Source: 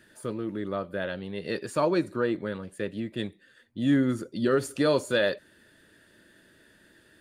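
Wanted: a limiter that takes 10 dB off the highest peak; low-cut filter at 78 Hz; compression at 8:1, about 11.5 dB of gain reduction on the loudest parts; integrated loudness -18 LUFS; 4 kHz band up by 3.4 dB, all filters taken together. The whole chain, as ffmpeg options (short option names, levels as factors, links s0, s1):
-af "highpass=78,equalizer=f=4000:t=o:g=4,acompressor=threshold=0.0282:ratio=8,volume=13.3,alimiter=limit=0.422:level=0:latency=1"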